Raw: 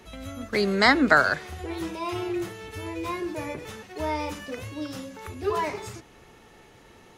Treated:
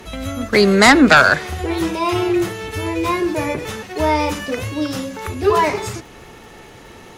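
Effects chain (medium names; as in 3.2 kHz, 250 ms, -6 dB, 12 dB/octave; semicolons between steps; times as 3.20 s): crackle 64 per s -51 dBFS; sine folder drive 7 dB, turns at -4 dBFS; trim +1 dB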